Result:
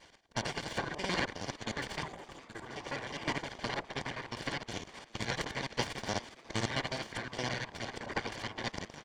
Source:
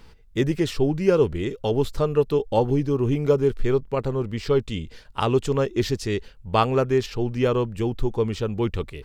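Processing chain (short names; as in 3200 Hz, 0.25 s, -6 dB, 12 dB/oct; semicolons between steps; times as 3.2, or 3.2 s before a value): local time reversal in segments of 52 ms; frequency shift +140 Hz; spectral gain 2.04–2.66, 450–6800 Hz -21 dB; high shelf 3200 Hz +11 dB; spectral gate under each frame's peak -15 dB weak; full-wave rectifier; air absorption 120 m; notch comb 1300 Hz; frequency-shifting echo 0.41 s, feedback 62%, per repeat +110 Hz, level -19 dB; noise-modulated level, depth 55%; gain +7 dB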